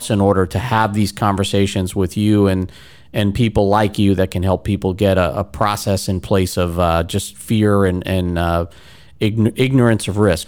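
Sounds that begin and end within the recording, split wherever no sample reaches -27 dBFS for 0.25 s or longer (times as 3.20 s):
3.14–8.66 s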